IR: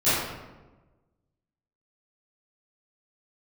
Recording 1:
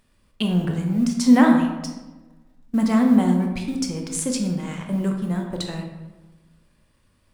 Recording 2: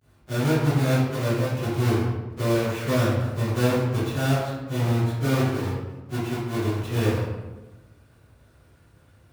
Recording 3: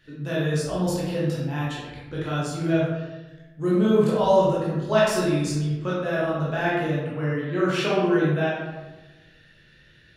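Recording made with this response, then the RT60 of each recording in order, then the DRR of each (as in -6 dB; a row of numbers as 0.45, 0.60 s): 2; 1.2, 1.2, 1.2 s; 2.0, -17.5, -7.5 dB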